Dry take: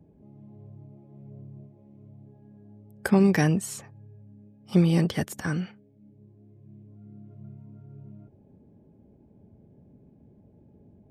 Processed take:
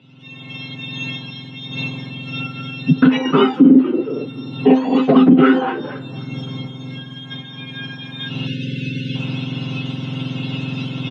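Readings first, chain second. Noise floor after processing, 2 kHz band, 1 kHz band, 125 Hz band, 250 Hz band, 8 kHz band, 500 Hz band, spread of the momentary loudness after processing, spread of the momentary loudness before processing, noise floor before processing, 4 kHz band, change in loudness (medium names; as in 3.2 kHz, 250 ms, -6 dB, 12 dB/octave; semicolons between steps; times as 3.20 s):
-36 dBFS, +11.0 dB, +15.0 dB, +6.0 dB, +13.5 dB, no reading, +12.5 dB, 20 LU, 16 LU, -58 dBFS, +18.0 dB, +7.0 dB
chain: spectrum inverted on a logarithmic axis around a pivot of 1.5 kHz; recorder AGC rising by 28 dB/s; bass shelf 210 Hz +9.5 dB; comb 7.4 ms, depth 49%; frequency-shifting echo 228 ms, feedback 32%, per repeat +84 Hz, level -22 dB; compression 6:1, threshold -35 dBFS, peak gain reduction 15.5 dB; Chebyshev band-pass 130–3100 Hz, order 4; peaking EQ 300 Hz +7 dB 2.1 oct; feedback comb 260 Hz, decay 0.18 s, harmonics all, mix 70%; filtered feedback delay 256 ms, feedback 64%, low-pass 2.2 kHz, level -21 dB; spectral selection erased 8.47–9.15 s, 570–1400 Hz; loudness maximiser +32.5 dB; trim -1 dB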